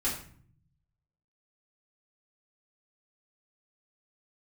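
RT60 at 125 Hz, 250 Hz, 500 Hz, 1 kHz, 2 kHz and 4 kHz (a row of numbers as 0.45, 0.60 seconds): 1.3, 0.95, 0.55, 0.50, 0.50, 0.40 seconds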